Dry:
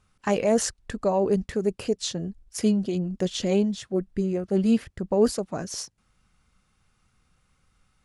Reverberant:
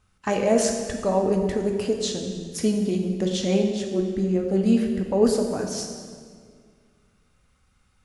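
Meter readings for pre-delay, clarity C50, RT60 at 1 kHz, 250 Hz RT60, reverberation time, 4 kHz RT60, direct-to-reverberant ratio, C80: 3 ms, 4.5 dB, 1.8 s, 2.4 s, 1.9 s, 1.5 s, 2.5 dB, 6.0 dB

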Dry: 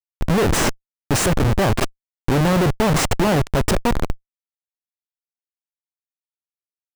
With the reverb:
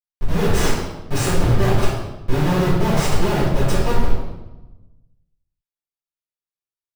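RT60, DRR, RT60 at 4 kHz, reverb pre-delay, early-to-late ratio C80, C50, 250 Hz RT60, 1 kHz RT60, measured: 1.0 s, -13.0 dB, 0.80 s, 4 ms, 3.5 dB, 0.0 dB, 1.3 s, 0.95 s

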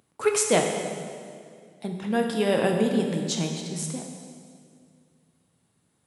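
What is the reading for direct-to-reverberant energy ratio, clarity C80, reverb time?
2.0 dB, 5.5 dB, 2.1 s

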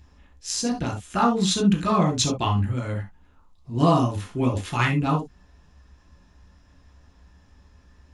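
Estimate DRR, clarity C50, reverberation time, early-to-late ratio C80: 1.0 dB, 10.0 dB, not exponential, 27.0 dB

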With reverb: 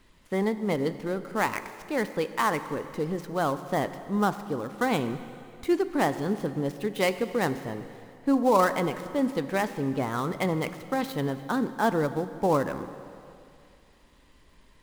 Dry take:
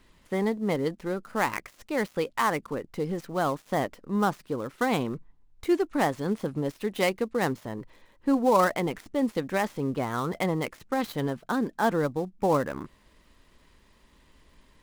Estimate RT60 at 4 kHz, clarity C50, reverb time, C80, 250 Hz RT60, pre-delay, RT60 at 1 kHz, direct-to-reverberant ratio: 2.4 s, 12.0 dB, 2.5 s, 13.0 dB, 2.6 s, 8 ms, 2.5 s, 11.5 dB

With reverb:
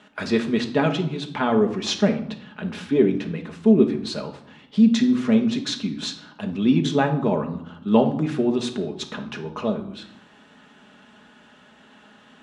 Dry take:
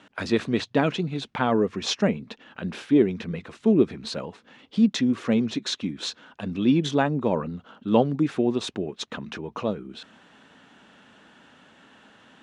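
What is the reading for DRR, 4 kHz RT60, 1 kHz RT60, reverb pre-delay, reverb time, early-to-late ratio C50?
3.5 dB, 0.55 s, 0.75 s, 5 ms, 0.75 s, 10.0 dB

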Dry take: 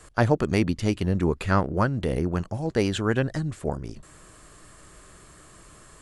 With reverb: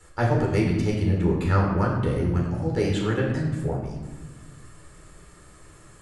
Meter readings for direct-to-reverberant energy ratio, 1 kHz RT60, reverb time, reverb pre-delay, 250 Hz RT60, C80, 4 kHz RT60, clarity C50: -3.0 dB, 1.1 s, 1.2 s, 12 ms, 1.9 s, 5.0 dB, 0.75 s, 3.0 dB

